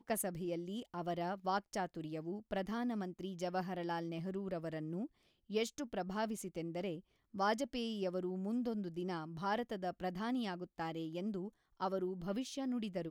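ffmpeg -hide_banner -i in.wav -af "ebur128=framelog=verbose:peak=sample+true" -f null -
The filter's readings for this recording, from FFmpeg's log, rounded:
Integrated loudness:
  I:         -40.5 LUFS
  Threshold: -50.5 LUFS
Loudness range:
  LRA:         1.9 LU
  Threshold: -60.5 LUFS
  LRA low:   -41.5 LUFS
  LRA high:  -39.5 LUFS
Sample peak:
  Peak:      -23.4 dBFS
True peak:
  Peak:      -23.4 dBFS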